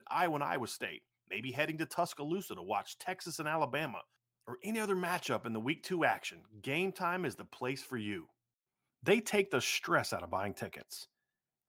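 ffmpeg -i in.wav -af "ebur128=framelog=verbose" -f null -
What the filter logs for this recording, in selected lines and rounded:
Integrated loudness:
  I:         -36.0 LUFS
  Threshold: -46.4 LUFS
Loudness range:
  LRA:         3.0 LU
  Threshold: -56.6 LUFS
  LRA low:   -38.1 LUFS
  LRA high:  -35.1 LUFS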